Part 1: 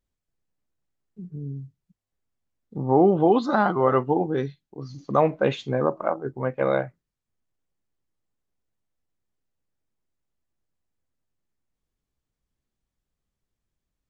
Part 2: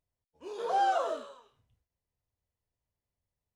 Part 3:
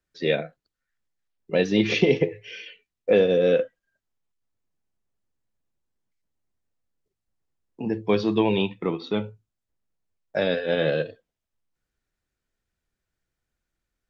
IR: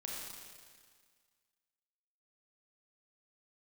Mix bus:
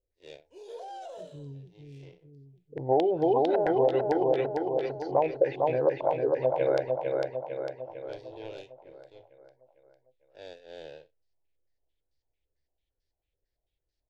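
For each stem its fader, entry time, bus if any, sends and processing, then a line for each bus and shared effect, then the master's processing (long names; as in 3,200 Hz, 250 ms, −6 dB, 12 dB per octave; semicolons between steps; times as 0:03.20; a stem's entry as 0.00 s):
−3.0 dB, 0.00 s, no send, echo send −4.5 dB, low-pass on a step sequencer 9 Hz 500–4,800 Hz
−5.0 dB, 0.10 s, no send, no echo send, brickwall limiter −27 dBFS, peak gain reduction 8.5 dB
−11.0 dB, 0.00 s, no send, no echo send, spectrum smeared in time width 104 ms; power curve on the samples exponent 2; automatic ducking −20 dB, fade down 0.70 s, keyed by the first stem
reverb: not used
echo: repeating echo 452 ms, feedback 54%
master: phaser with its sweep stopped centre 500 Hz, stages 4; downward compressor, threshold −19 dBFS, peak gain reduction 7.5 dB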